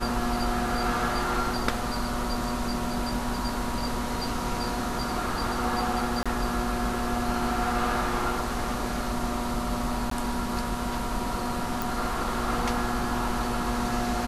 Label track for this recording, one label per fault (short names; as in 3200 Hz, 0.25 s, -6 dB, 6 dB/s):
6.230000	6.260000	gap 26 ms
10.100000	10.110000	gap 13 ms
11.820000	11.820000	pop